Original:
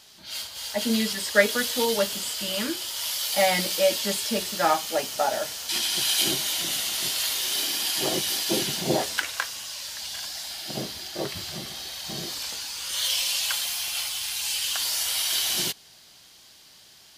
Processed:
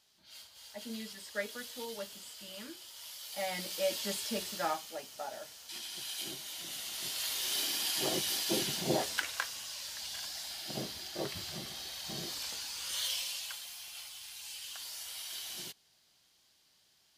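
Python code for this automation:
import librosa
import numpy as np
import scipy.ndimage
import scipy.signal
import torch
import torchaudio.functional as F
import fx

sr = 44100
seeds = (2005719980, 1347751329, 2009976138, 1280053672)

y = fx.gain(x, sr, db=fx.line((3.22, -18.0), (4.0, -9.5), (4.53, -9.5), (4.98, -17.0), (6.43, -17.0), (7.52, -7.0), (12.92, -7.0), (13.6, -17.0)))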